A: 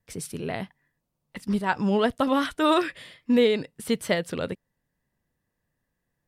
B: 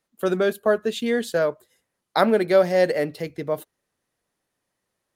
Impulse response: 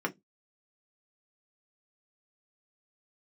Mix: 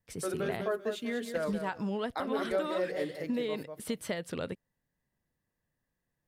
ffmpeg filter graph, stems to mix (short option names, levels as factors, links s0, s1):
-filter_complex "[0:a]acompressor=threshold=0.0562:ratio=6,volume=0.562,asplit=2[s0][s1];[1:a]acrusher=bits=10:mix=0:aa=0.000001,volume=0.237,asplit=3[s2][s3][s4];[s3]volume=0.237[s5];[s4]volume=0.422[s6];[s1]apad=whole_len=227372[s7];[s2][s7]sidechaincompress=threshold=0.0126:ratio=8:attack=16:release=531[s8];[2:a]atrim=start_sample=2205[s9];[s5][s9]afir=irnorm=-1:irlink=0[s10];[s6]aecho=0:1:195|390|585|780:1|0.27|0.0729|0.0197[s11];[s0][s8][s10][s11]amix=inputs=4:normalize=0,alimiter=limit=0.0841:level=0:latency=1:release=199"